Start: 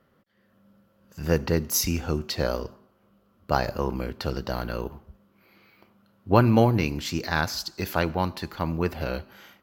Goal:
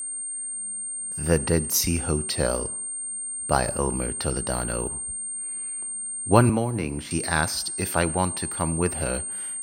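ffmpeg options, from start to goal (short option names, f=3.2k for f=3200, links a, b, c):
-filter_complex "[0:a]aeval=exprs='val(0)+0.0282*sin(2*PI*8700*n/s)':c=same,asettb=1/sr,asplit=3[a][b][c];[a]atrim=end=6.494[d];[b]atrim=start=6.49:end=7.11,asetpts=PTS-STARTPTS,afade=t=in:d=0.004:c=qsin,afade=t=out:st=0.616:d=0.004:c=qsin,acrossover=split=230|2000[e][f][g];[e]acompressor=threshold=-30dB:ratio=4[h];[f]acompressor=threshold=-26dB:ratio=4[i];[g]acompressor=threshold=-43dB:ratio=4[j];[h][i][j]amix=inputs=3:normalize=0[k];[c]atrim=start=7.106[l];[d][k]acrossfade=d=0.004:c1=hsin:c2=qsin[m];[m][l]acrossfade=d=0.004:c1=qsin:c2=hsin,volume=1.5dB"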